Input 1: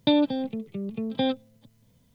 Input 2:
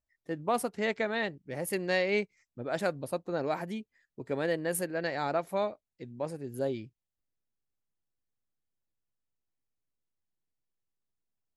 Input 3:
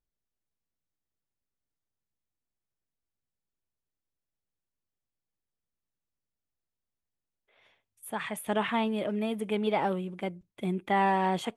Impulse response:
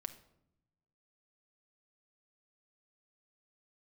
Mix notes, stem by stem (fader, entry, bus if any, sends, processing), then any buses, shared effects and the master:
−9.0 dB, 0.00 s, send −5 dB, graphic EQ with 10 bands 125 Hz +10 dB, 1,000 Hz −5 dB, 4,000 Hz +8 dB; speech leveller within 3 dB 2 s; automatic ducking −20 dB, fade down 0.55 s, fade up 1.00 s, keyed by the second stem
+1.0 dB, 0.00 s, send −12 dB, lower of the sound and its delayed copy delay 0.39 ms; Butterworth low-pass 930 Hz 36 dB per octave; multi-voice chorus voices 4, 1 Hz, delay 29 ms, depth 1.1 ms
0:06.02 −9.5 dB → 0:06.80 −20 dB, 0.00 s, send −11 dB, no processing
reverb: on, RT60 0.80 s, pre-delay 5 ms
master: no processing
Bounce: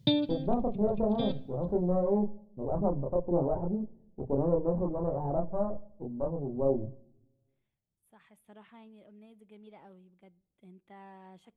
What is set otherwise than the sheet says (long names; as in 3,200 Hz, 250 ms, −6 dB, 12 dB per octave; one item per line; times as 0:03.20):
stem 2: send −12 dB → −2.5 dB
stem 3 −9.5 dB → −19.0 dB
master: extra low-shelf EQ 400 Hz +6 dB